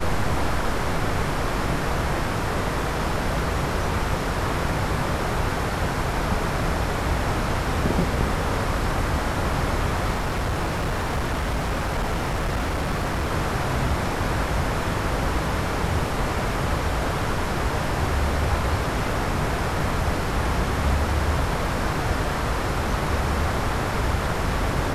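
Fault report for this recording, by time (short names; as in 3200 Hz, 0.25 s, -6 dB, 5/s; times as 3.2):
10.13–13.29 clipped -20.5 dBFS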